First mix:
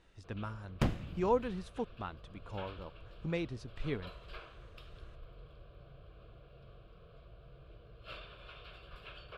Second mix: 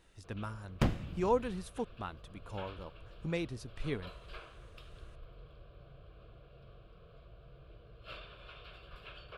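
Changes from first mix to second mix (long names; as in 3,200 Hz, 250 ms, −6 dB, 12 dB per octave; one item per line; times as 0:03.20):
speech: remove high-frequency loss of the air 78 metres
second sound: send +11.0 dB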